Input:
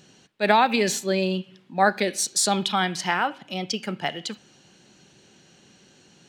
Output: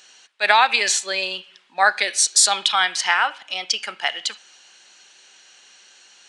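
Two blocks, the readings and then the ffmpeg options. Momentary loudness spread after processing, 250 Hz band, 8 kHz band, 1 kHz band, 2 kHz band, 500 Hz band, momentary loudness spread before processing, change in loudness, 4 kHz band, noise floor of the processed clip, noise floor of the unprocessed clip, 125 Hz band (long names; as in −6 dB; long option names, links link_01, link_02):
13 LU, −18.0 dB, +8.0 dB, +2.5 dB, +7.5 dB, −4.5 dB, 13 LU, +5.0 dB, +8.0 dB, −53 dBFS, −56 dBFS, below −20 dB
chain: -af "aresample=22050,aresample=44100,highpass=1100,volume=8dB"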